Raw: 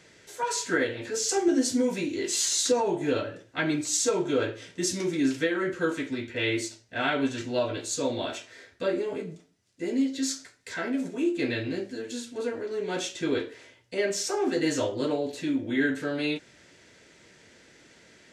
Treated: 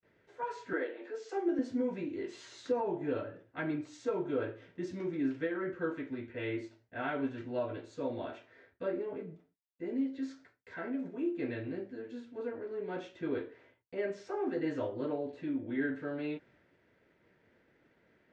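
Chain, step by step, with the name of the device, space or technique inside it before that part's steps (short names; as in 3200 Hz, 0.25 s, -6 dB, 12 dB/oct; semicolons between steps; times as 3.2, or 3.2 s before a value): hearing-loss simulation (LPF 1700 Hz 12 dB/oct; expander -54 dBFS); 0.73–1.59 Chebyshev band-pass 300–7900 Hz, order 4; gate with hold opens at -57 dBFS; gain -7.5 dB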